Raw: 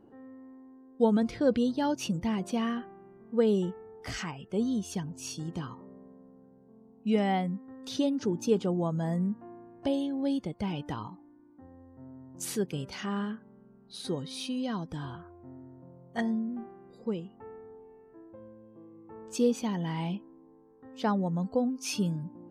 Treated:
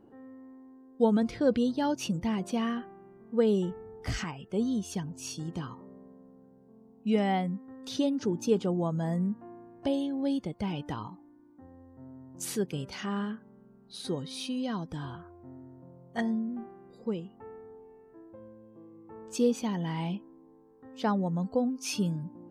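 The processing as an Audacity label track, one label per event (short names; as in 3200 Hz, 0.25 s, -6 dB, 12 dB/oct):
3.710000	4.240000	low shelf 200 Hz +11 dB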